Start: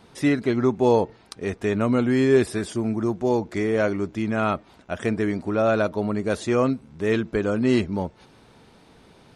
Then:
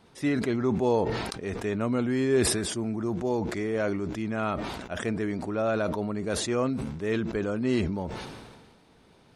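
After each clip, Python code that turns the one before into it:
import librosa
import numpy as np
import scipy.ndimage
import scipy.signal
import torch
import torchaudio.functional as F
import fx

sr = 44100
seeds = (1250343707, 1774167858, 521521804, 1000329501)

y = fx.sustainer(x, sr, db_per_s=36.0)
y = F.gain(torch.from_numpy(y), -6.5).numpy()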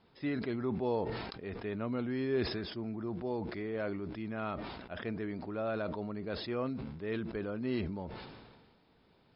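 y = fx.brickwall_lowpass(x, sr, high_hz=5300.0)
y = F.gain(torch.from_numpy(y), -8.5).numpy()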